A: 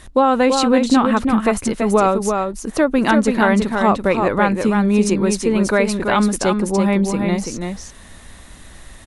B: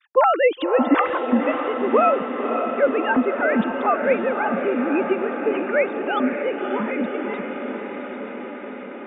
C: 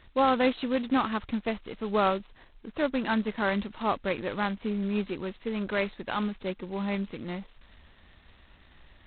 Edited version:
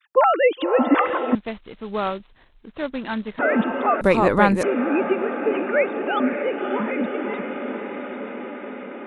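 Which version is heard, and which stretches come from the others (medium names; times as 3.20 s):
B
1.35–3.39 s: from C
4.01–4.63 s: from A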